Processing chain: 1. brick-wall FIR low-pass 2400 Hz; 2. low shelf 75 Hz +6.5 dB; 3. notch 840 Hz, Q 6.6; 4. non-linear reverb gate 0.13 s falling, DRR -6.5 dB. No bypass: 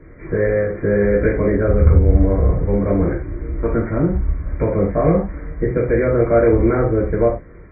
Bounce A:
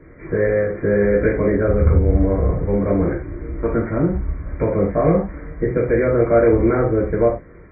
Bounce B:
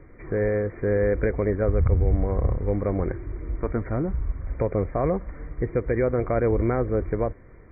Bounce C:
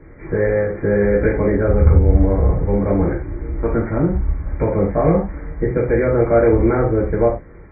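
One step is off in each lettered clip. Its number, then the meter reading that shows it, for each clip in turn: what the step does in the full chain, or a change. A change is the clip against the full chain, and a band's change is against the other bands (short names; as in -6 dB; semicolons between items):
2, 125 Hz band -2.5 dB; 4, momentary loudness spread change -2 LU; 3, 1 kHz band +1.5 dB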